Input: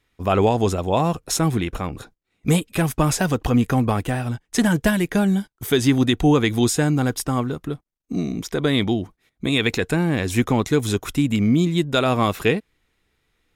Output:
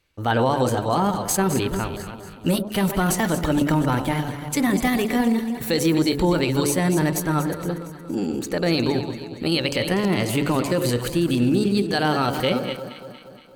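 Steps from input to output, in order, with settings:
delay that plays each chunk backwards 180 ms, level −11 dB
mains-hum notches 60/120/180/240/300/360/420/480/540 Hz
brickwall limiter −11 dBFS, peak gain reduction 6.5 dB
on a send: delay that swaps between a low-pass and a high-pass 117 ms, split 870 Hz, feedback 75%, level −9.5 dB
on the sum: pitch shifter +3 semitones

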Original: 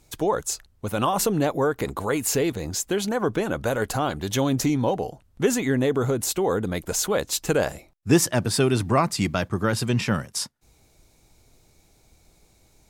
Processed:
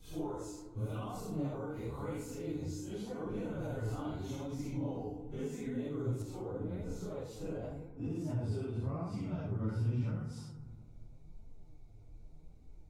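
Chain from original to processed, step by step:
random phases in long frames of 200 ms
brickwall limiter −15.5 dBFS, peak gain reduction 9 dB
high-shelf EQ 2,300 Hz +9 dB, from 0:06.22 −2.5 dB
downward compressor 2.5 to 1, threshold −38 dBFS, peak gain reduction 14 dB
spectral tilt −3.5 dB per octave
notch filter 1,700 Hz, Q 5.9
feedback delay network reverb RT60 1.6 s, low-frequency decay 1.35×, high-frequency decay 0.3×, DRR 7 dB
flanger 0.87 Hz, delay 3.8 ms, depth 6.7 ms, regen +46%
level −6.5 dB

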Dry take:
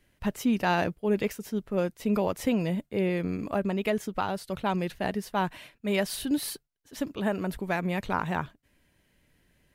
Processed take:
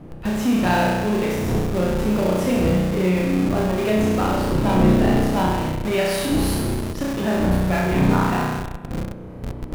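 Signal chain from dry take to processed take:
spectral magnitudes quantised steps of 15 dB
wind on the microphone 280 Hz −32 dBFS
flutter between parallel walls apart 5.6 metres, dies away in 1.3 s
in parallel at −6 dB: comparator with hysteresis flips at −28.5 dBFS

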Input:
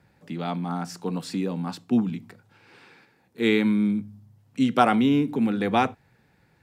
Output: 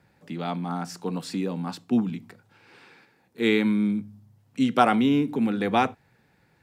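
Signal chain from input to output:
low-shelf EQ 130 Hz −4 dB

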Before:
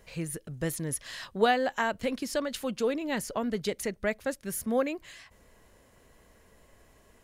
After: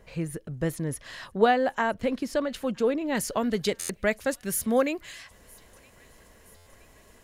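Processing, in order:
high-shelf EQ 2,500 Hz −9.5 dB, from 0:03.15 +2.5 dB
delay with a high-pass on its return 967 ms, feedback 57%, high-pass 1,900 Hz, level −23.5 dB
buffer that repeats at 0:03.79/0:06.56, samples 512, times 8
level +4 dB

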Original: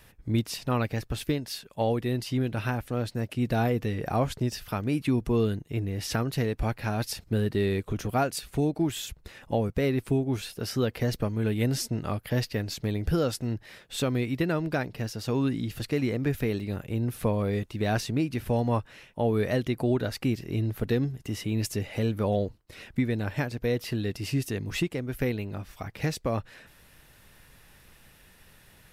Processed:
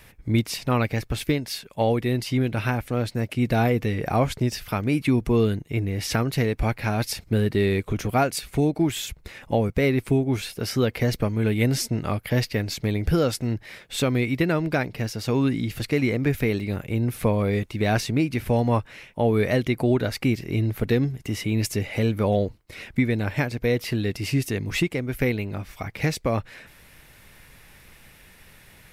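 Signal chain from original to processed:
parametric band 2,200 Hz +7.5 dB 0.22 octaves
level +4.5 dB

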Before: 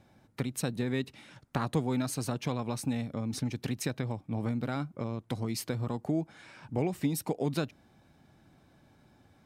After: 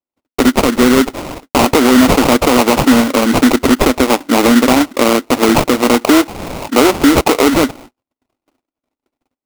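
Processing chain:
noise gate −55 dBFS, range −58 dB
elliptic high-pass filter 250 Hz
notch filter 1,300 Hz, Q 6.3
sample-rate reduction 1,700 Hz, jitter 20%
boost into a limiter +30.5 dB
level −1 dB

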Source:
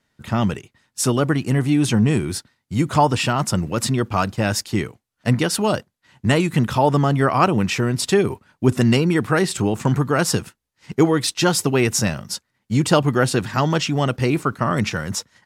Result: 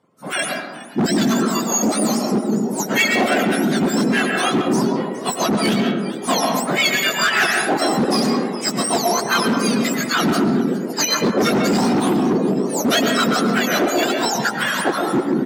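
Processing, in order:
frequency axis turned over on the octave scale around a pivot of 1,400 Hz
low-pass filter 11,000 Hz 12 dB per octave
high-shelf EQ 4,600 Hz −10 dB
echo with shifted repeats 412 ms, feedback 57%, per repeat +130 Hz, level −18 dB
reverb reduction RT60 0.78 s
on a send at −2 dB: convolution reverb RT60 1.3 s, pre-delay 75 ms
on the sum: hard clipping −19 dBFS, distortion −7 dB
high-pass filter 120 Hz 12 dB per octave
boost into a limiter +16.5 dB
level −8.5 dB

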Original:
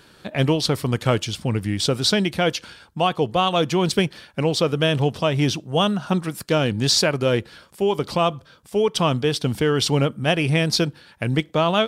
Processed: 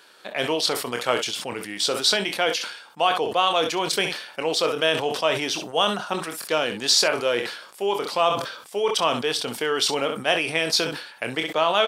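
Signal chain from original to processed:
high-pass filter 530 Hz 12 dB per octave
ambience of single reflections 25 ms −11.5 dB, 65 ms −16.5 dB
level that may fall only so fast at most 75 dB per second

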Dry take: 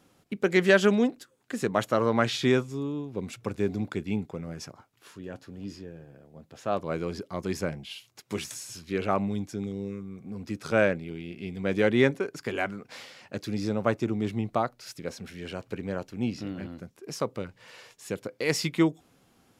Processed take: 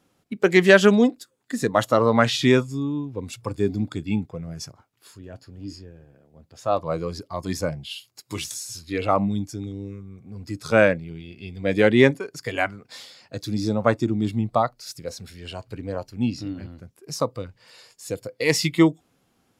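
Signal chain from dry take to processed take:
noise reduction from a noise print of the clip's start 10 dB
level +6.5 dB

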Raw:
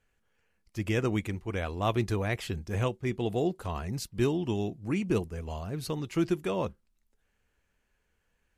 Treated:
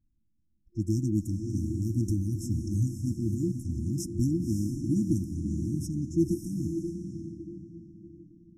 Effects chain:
feedback delay with all-pass diffusion 568 ms, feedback 42%, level −6 dB
low-pass that shuts in the quiet parts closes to 1,800 Hz, open at −26.5 dBFS
brick-wall band-stop 350–5,200 Hz
level +3 dB

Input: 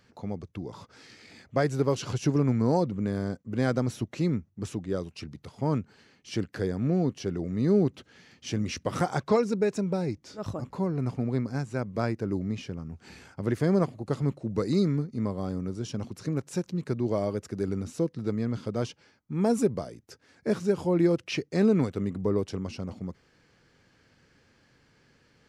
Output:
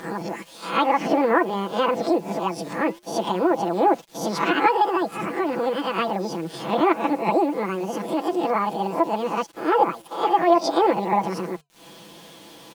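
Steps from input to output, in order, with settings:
peak hold with a rise ahead of every peak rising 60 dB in 0.65 s
high-pass filter 64 Hz 12 dB per octave
treble cut that deepens with the level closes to 1,500 Hz, closed at −21.5 dBFS
low-pass filter 3,600 Hz 12 dB per octave
noise gate −47 dBFS, range −13 dB
upward compression, threshold −30 dBFS
bit reduction 9 bits
flanger 0.27 Hz, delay 1.7 ms, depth 9 ms, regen −88%
double-tracking delay 12 ms −4 dB
wrong playback speed 7.5 ips tape played at 15 ips
level +8 dB

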